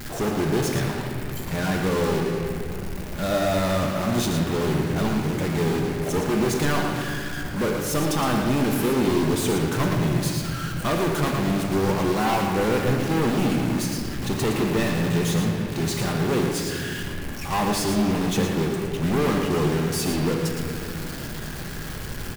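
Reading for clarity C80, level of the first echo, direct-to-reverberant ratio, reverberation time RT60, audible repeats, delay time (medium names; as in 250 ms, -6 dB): 2.5 dB, -7.5 dB, 0.5 dB, 2.6 s, 1, 114 ms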